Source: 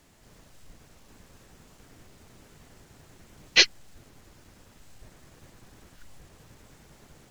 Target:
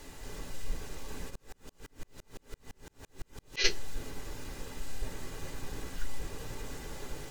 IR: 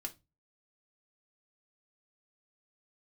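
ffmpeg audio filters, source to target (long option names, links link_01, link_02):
-filter_complex "[1:a]atrim=start_sample=2205,asetrate=61740,aresample=44100[link_01];[0:a][link_01]afir=irnorm=-1:irlink=0,asplit=3[link_02][link_03][link_04];[link_02]afade=type=out:start_time=1.29:duration=0.02[link_05];[link_03]aeval=exprs='val(0)*pow(10,-38*if(lt(mod(-5.9*n/s,1),2*abs(-5.9)/1000),1-mod(-5.9*n/s,1)/(2*abs(-5.9)/1000),(mod(-5.9*n/s,1)-2*abs(-5.9)/1000)/(1-2*abs(-5.9)/1000))/20)':channel_layout=same,afade=type=in:start_time=1.29:duration=0.02,afade=type=out:start_time=3.64:duration=0.02[link_06];[link_04]afade=type=in:start_time=3.64:duration=0.02[link_07];[link_05][link_06][link_07]amix=inputs=3:normalize=0,volume=15.5dB"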